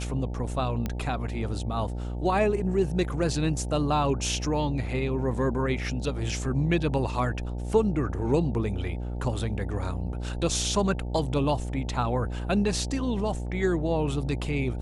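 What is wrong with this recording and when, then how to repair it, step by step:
buzz 60 Hz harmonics 15 -32 dBFS
0.86 pop -16 dBFS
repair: de-click; de-hum 60 Hz, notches 15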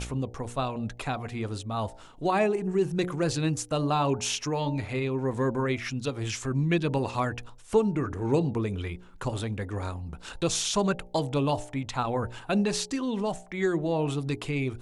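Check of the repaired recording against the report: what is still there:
none

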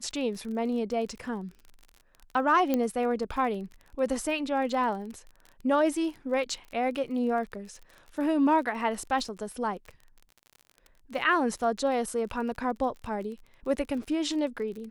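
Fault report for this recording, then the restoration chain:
crackle 35/s -38 dBFS
2.74 pop -13 dBFS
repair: de-click

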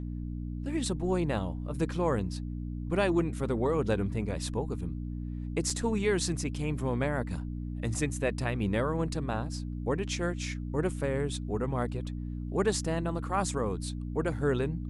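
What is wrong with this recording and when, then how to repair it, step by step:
hum 60 Hz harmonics 5 -36 dBFS
5.7 gap 2.1 ms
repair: de-hum 60 Hz, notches 5; interpolate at 5.7, 2.1 ms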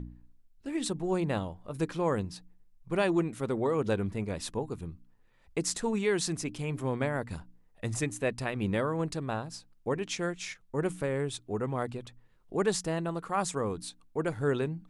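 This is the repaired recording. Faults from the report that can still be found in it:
none

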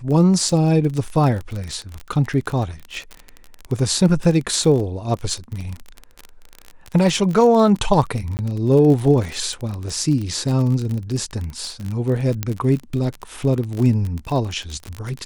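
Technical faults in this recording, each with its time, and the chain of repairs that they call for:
crackle 34/s -23 dBFS
8.37–8.39 gap 19 ms
12.43 pop -7 dBFS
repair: de-click; interpolate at 8.37, 19 ms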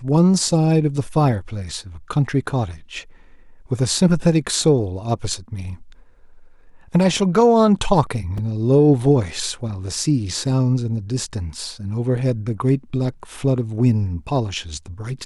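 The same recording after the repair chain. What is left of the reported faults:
none

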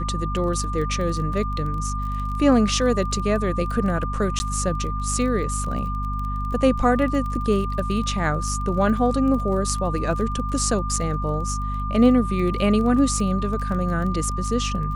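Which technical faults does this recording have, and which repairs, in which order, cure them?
crackle 21/s -30 dBFS
hum 50 Hz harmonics 5 -27 dBFS
tone 1200 Hz -29 dBFS
4.39–4.4 gap 10 ms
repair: de-click; notch 1200 Hz, Q 30; de-hum 50 Hz, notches 5; interpolate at 4.39, 10 ms

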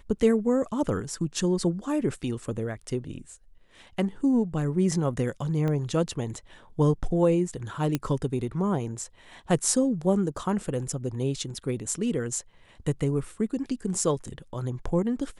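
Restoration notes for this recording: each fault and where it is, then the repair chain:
5.68 pop -19 dBFS
7.95 pop -12 dBFS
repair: de-click

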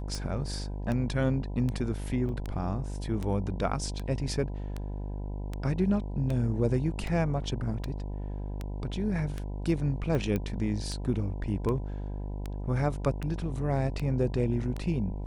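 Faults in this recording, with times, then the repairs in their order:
buzz 50 Hz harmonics 20 -35 dBFS
tick 78 rpm -21 dBFS
2.29 gap 2.4 ms
10.36 pop -18 dBFS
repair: de-click; de-hum 50 Hz, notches 20; interpolate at 2.29, 2.4 ms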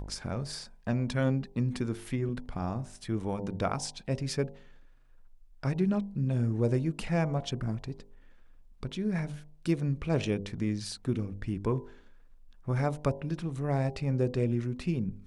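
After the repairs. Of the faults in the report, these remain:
none

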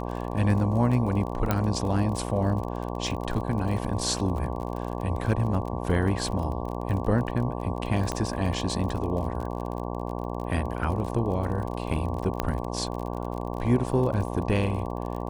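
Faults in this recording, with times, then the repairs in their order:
buzz 60 Hz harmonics 19 -32 dBFS
crackle 37/s -33 dBFS
1.51 pop -10 dBFS
8.12 pop -15 dBFS
12.4 pop -11 dBFS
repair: de-click; de-hum 60 Hz, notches 19

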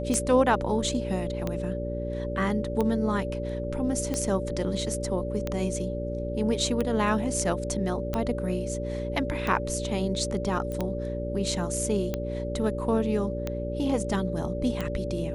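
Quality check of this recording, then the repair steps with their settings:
hum 60 Hz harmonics 8 -33 dBFS
tick 45 rpm -15 dBFS
tone 580 Hz -33 dBFS
10.72 pop -22 dBFS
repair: de-click; notch 580 Hz, Q 30; de-hum 60 Hz, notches 8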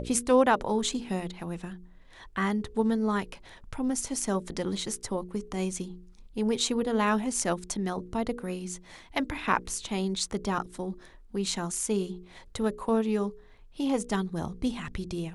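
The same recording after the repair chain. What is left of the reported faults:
none

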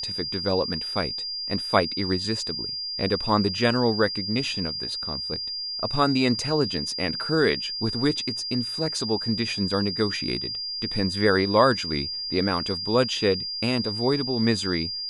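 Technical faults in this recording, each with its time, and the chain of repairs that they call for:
tone 4800 Hz -29 dBFS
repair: notch 4800 Hz, Q 30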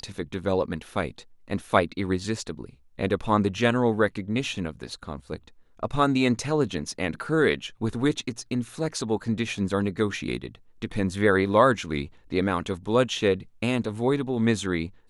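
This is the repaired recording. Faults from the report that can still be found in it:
none

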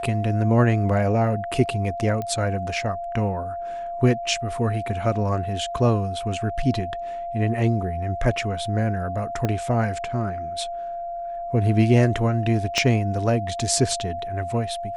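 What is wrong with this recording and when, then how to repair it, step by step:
tone 690 Hz -28 dBFS
2.22 pop -17 dBFS
9.45 pop -11 dBFS
12.78 pop -8 dBFS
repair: de-click; notch 690 Hz, Q 30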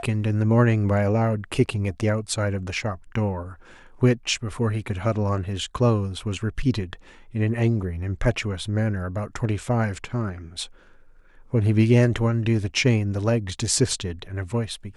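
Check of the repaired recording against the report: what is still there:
9.45 pop
12.78 pop

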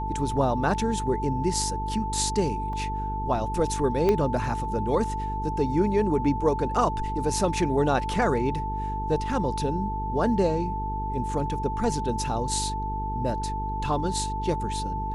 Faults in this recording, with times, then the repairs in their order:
buzz 50 Hz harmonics 9 -32 dBFS
tone 880 Hz -30 dBFS
2.73 gap 2.5 ms
4.09 pop -12 dBFS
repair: de-click; de-hum 50 Hz, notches 9; notch 880 Hz, Q 30; interpolate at 2.73, 2.5 ms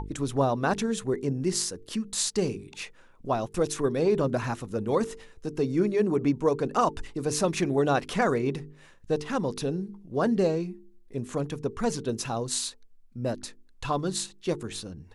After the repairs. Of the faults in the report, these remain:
4.09 pop

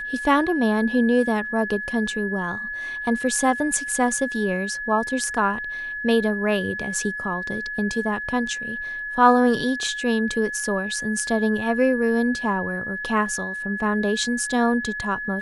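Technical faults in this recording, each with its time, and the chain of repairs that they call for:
tone 1700 Hz -28 dBFS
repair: notch 1700 Hz, Q 30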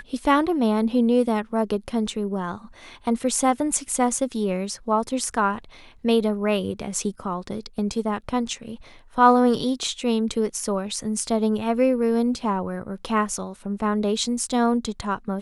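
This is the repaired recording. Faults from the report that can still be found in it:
none

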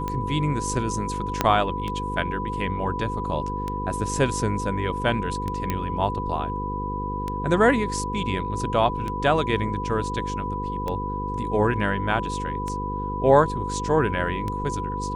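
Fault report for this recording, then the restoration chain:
buzz 50 Hz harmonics 10 -31 dBFS
tick 33 1/3 rpm -16 dBFS
tone 990 Hz -29 dBFS
1.41 pop -5 dBFS
5.7 pop -11 dBFS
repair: de-click; de-hum 50 Hz, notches 10; notch 990 Hz, Q 30

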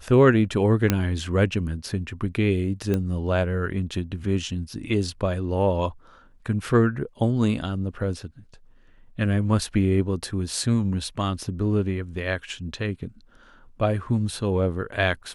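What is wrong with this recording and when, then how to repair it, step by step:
0.9 pop -5 dBFS
2.94 pop -13 dBFS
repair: de-click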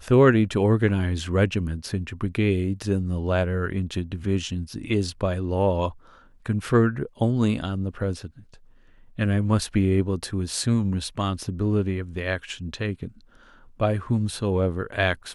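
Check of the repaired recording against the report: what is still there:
none

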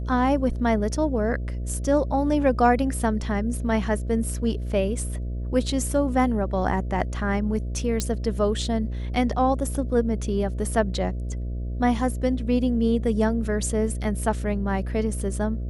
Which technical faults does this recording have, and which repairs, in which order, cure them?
buzz 60 Hz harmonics 11 -29 dBFS
8 pop -10 dBFS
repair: de-click; de-hum 60 Hz, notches 11

